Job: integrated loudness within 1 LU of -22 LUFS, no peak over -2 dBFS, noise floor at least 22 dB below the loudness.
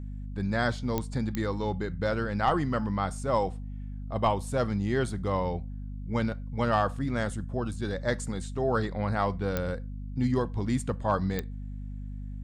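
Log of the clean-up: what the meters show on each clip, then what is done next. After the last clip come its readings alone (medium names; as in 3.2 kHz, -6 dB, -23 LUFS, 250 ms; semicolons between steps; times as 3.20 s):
clicks found 4; hum 50 Hz; highest harmonic 250 Hz; hum level -34 dBFS; loudness -30.0 LUFS; peak level -12.0 dBFS; loudness target -22.0 LUFS
-> de-click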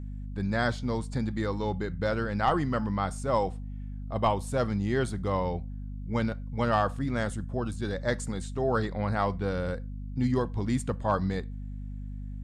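clicks found 0; hum 50 Hz; highest harmonic 250 Hz; hum level -34 dBFS
-> de-hum 50 Hz, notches 5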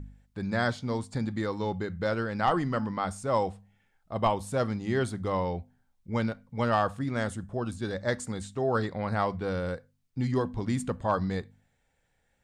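hum not found; loudness -30.5 LUFS; peak level -14.0 dBFS; loudness target -22.0 LUFS
-> trim +8.5 dB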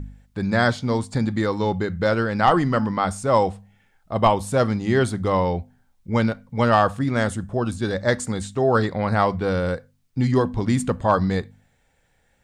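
loudness -22.0 LUFS; peak level -5.5 dBFS; noise floor -64 dBFS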